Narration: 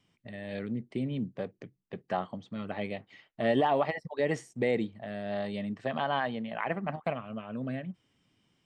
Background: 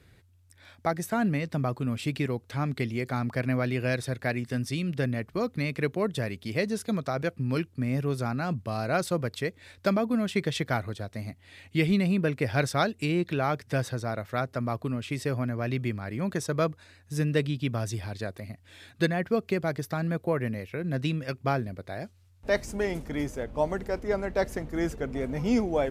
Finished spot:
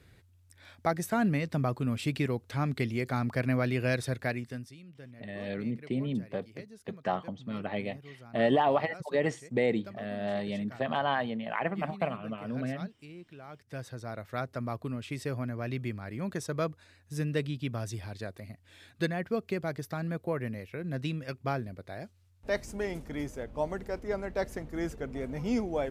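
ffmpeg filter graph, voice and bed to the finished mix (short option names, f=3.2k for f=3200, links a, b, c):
-filter_complex "[0:a]adelay=4950,volume=1dB[a];[1:a]volume=15dB,afade=t=out:st=4.15:d=0.59:silence=0.1,afade=t=in:st=13.47:d=0.94:silence=0.158489[b];[a][b]amix=inputs=2:normalize=0"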